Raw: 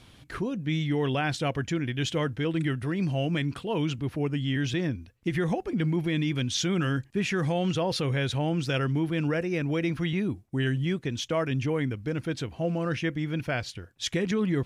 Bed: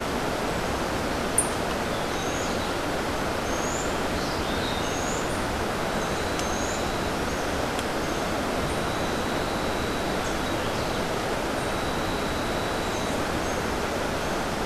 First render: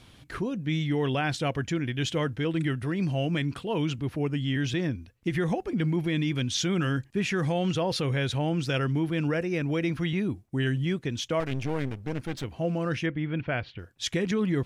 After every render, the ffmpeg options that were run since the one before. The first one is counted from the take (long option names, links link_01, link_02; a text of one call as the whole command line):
ffmpeg -i in.wav -filter_complex "[0:a]asettb=1/sr,asplit=3[link_01][link_02][link_03];[link_01]atrim=end=11.404[link_04];[link_02]atrim=start=11.4:end=12.44,asetpts=PTS-STARTPTS,afade=type=in:duration=0.004:curve=qsin,afade=type=out:start_time=1.036:duration=0.004:curve=qsin,aeval=exprs='clip(val(0),-1,0.00891)':channel_layout=same[link_05];[link_03]atrim=start=12.436[link_06];[link_04][link_05]acrossfade=duration=0.004:curve1=hsin:curve2=qsin[link_07];[link_07][link_06]acrossfade=duration=0.004:curve1=qsin:curve2=hsin,asettb=1/sr,asplit=3[link_08][link_09][link_10];[link_08]atrim=end=13.064[link_11];[link_09]atrim=start=13.06:end=13.79,asetpts=PTS-STARTPTS,afade=type=in:duration=0.004:curve=qsin,afade=type=out:start_time=0.726:duration=0.004:curve=qsin,lowpass=frequency=3200:width=0.5412,lowpass=frequency=3200:width=1.3066[link_12];[link_10]atrim=start=13.786[link_13];[link_11][link_12]acrossfade=duration=0.004:curve1=hsin:curve2=qsin[link_14];[link_14][link_13]acrossfade=duration=0.004:curve1=qsin:curve2=hsin" out.wav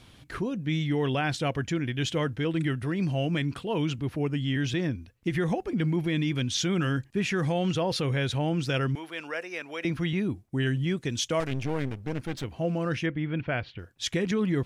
ffmpeg -i in.wav -filter_complex "[0:a]asettb=1/sr,asplit=3[link_01][link_02][link_03];[link_01]atrim=end=8.954[link_04];[link_02]atrim=start=8.95:end=9.85,asetpts=PTS-STARTPTS,afade=type=in:duration=0.004:curve=qsin,afade=type=out:start_time=0.896:duration=0.004:curve=qsin,highpass=690[link_05];[link_03]atrim=start=9.846[link_06];[link_04][link_05]acrossfade=duration=0.004:curve1=hsin:curve2=qsin[link_07];[link_07][link_06]acrossfade=duration=0.004:curve1=qsin:curve2=hsin,asettb=1/sr,asplit=3[link_08][link_09][link_10];[link_08]atrim=end=10.974[link_11];[link_09]atrim=start=10.97:end=11.47,asetpts=PTS-STARTPTS,afade=type=in:duration=0.004:curve=qsin,afade=type=out:start_time=0.496:duration=0.004:curve=qsin,equalizer=frequency=8300:width=0.6:gain=8.5[link_12];[link_10]atrim=start=11.466[link_13];[link_11][link_12]acrossfade=duration=0.004:curve1=hsin:curve2=qsin[link_14];[link_14][link_13]acrossfade=duration=0.004:curve1=qsin:curve2=hsin" out.wav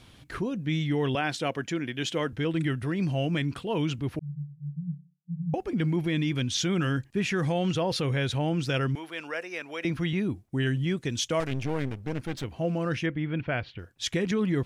ffmpeg -i in.wav -filter_complex "[0:a]asettb=1/sr,asplit=3[link_01][link_02][link_03];[link_01]atrim=end=1.154[link_04];[link_02]atrim=start=1.15:end=2.33,asetpts=PTS-STARTPTS,afade=type=in:duration=0.004:curve=qsin,afade=type=out:start_time=1.176:duration=0.004:curve=qsin,highpass=200[link_05];[link_03]atrim=start=2.326[link_06];[link_04][link_05]acrossfade=duration=0.004:curve1=hsin:curve2=qsin[link_07];[link_07][link_06]acrossfade=duration=0.004:curve1=qsin:curve2=hsin,asettb=1/sr,asplit=3[link_08][link_09][link_10];[link_08]atrim=end=4.194[link_11];[link_09]atrim=start=4.19:end=5.54,asetpts=PTS-STARTPTS,afade=type=in:duration=0.004:curve=qsin,afade=type=out:start_time=1.346:duration=0.004:curve=qsin,asuperpass=centerf=160:order=12:qfactor=4.4[link_12];[link_10]atrim=start=5.536[link_13];[link_11][link_12]acrossfade=duration=0.004:curve1=hsin:curve2=qsin[link_14];[link_14][link_13]acrossfade=duration=0.004:curve1=qsin:curve2=hsin" out.wav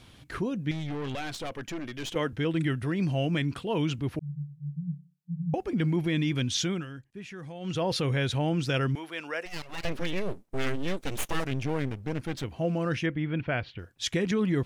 ffmpeg -i in.wav -filter_complex "[0:a]asettb=1/sr,asplit=3[link_01][link_02][link_03];[link_01]atrim=end=0.714[link_04];[link_02]atrim=start=0.71:end=2.16,asetpts=PTS-STARTPTS,afade=type=in:duration=0.004:curve=qsin,afade=type=out:start_time=1.446:duration=0.004:curve=qsin,aeval=exprs='(tanh(35.5*val(0)+0.55)-tanh(0.55))/35.5':channel_layout=same[link_05];[link_03]atrim=start=2.156[link_06];[link_04][link_05]acrossfade=duration=0.004:curve1=hsin:curve2=qsin[link_07];[link_07][link_06]acrossfade=duration=0.004:curve1=qsin:curve2=hsin,asplit=3[link_08][link_09][link_10];[link_08]afade=type=out:start_time=9.45:duration=0.02[link_11];[link_09]aeval=exprs='abs(val(0))':channel_layout=same,afade=type=in:start_time=9.45:duration=0.02,afade=type=out:start_time=11.44:duration=0.02[link_12];[link_10]afade=type=in:start_time=11.44:duration=0.02[link_13];[link_11][link_12][link_13]amix=inputs=3:normalize=0,asplit=3[link_14][link_15][link_16];[link_14]atrim=end=6.86,asetpts=PTS-STARTPTS,afade=type=out:start_time=6.52:duration=0.34:curve=qsin:silence=0.188365[link_17];[link_15]atrim=start=6.86:end=7.6,asetpts=PTS-STARTPTS,volume=-14.5dB[link_18];[link_16]atrim=start=7.6,asetpts=PTS-STARTPTS,afade=type=in:duration=0.34:curve=qsin:silence=0.188365[link_19];[link_17][link_18][link_19]concat=n=3:v=0:a=1" out.wav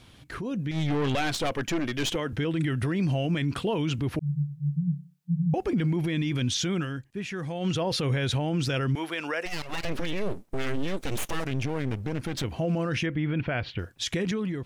ffmpeg -i in.wav -af "alimiter=level_in=3.5dB:limit=-24dB:level=0:latency=1:release=74,volume=-3.5dB,dynaudnorm=framelen=420:gausssize=3:maxgain=8dB" out.wav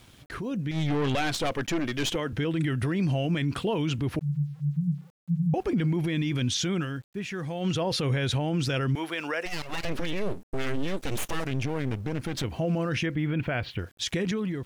ffmpeg -i in.wav -af "aeval=exprs='val(0)*gte(abs(val(0)),0.002)':channel_layout=same" out.wav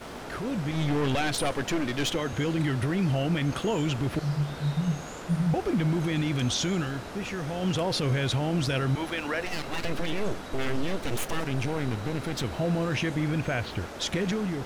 ffmpeg -i in.wav -i bed.wav -filter_complex "[1:a]volume=-12.5dB[link_01];[0:a][link_01]amix=inputs=2:normalize=0" out.wav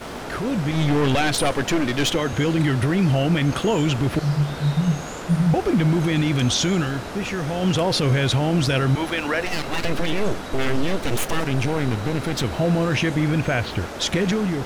ffmpeg -i in.wav -af "volume=7dB" out.wav